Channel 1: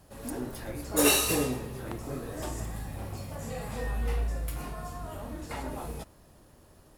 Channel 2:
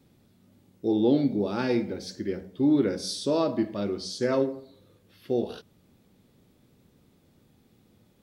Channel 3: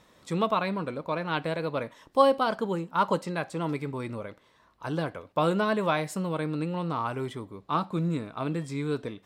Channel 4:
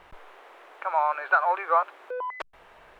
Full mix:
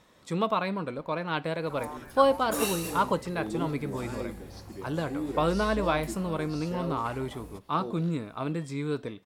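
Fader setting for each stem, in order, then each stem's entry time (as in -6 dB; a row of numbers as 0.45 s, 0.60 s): -8.5 dB, -12.0 dB, -1.0 dB, -17.5 dB; 1.55 s, 2.50 s, 0.00 s, 0.85 s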